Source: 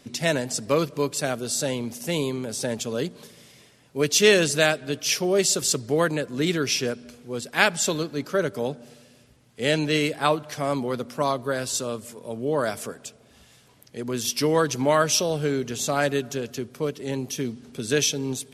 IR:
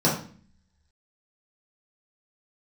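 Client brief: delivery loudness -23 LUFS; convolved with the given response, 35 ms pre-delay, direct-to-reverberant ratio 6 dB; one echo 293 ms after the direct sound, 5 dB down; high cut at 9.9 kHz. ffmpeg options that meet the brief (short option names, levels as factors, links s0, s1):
-filter_complex "[0:a]lowpass=9900,aecho=1:1:293:0.562,asplit=2[s0][s1];[1:a]atrim=start_sample=2205,adelay=35[s2];[s1][s2]afir=irnorm=-1:irlink=0,volume=0.0841[s3];[s0][s3]amix=inputs=2:normalize=0,volume=0.841"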